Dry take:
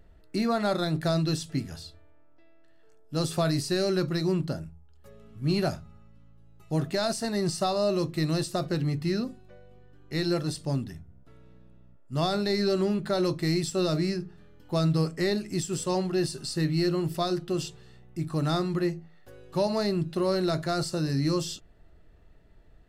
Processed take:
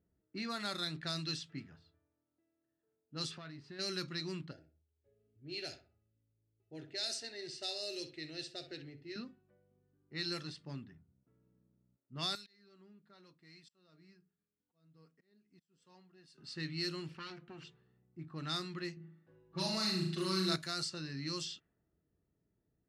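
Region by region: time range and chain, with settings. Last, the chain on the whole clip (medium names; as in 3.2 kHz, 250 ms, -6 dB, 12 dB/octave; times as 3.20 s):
3.31–3.79 s: self-modulated delay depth 0.054 ms + treble shelf 9.2 kHz -10.5 dB + compression, threshold -30 dBFS
4.51–9.16 s: static phaser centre 460 Hz, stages 4 + feedback delay 64 ms, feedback 34%, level -11 dB
12.35–16.38 s: pre-emphasis filter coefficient 0.9 + slow attack 356 ms + comb 4.3 ms, depth 35%
17.08–17.64 s: comb filter that takes the minimum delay 0.7 ms + peaking EQ 2.3 kHz +5.5 dB 0.38 oct + compression 10:1, threshold -29 dBFS
18.96–20.56 s: comb 6.1 ms, depth 83% + flutter echo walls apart 6.4 m, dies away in 0.61 s
whole clip: frequency weighting A; level-controlled noise filter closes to 540 Hz, open at -25.5 dBFS; amplifier tone stack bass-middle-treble 6-0-2; trim +13 dB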